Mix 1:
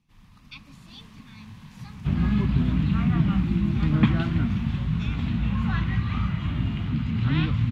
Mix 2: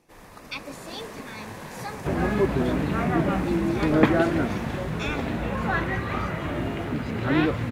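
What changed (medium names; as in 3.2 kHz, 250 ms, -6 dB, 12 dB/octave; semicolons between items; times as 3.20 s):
second sound -7.0 dB; master: remove FFT filter 120 Hz 0 dB, 220 Hz -3 dB, 360 Hz -22 dB, 560 Hz -27 dB, 1.1 kHz -12 dB, 1.7 kHz -16 dB, 3.1 kHz -5 dB, 5.7 kHz -12 dB, 8.4 kHz -17 dB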